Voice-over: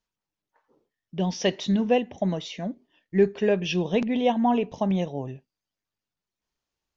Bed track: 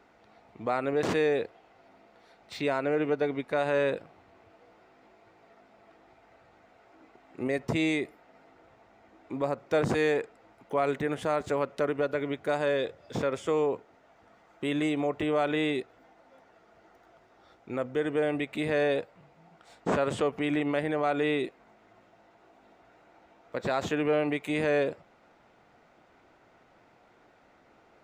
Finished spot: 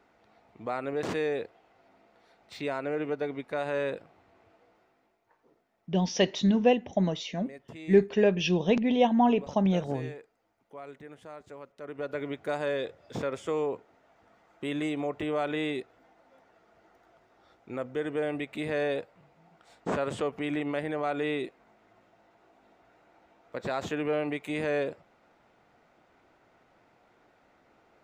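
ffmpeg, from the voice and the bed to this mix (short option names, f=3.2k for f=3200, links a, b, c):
-filter_complex "[0:a]adelay=4750,volume=-0.5dB[a];[1:a]volume=10dB,afade=t=out:st=4.49:d=0.72:silence=0.223872,afade=t=in:st=11.8:d=0.41:silence=0.199526[b];[a][b]amix=inputs=2:normalize=0"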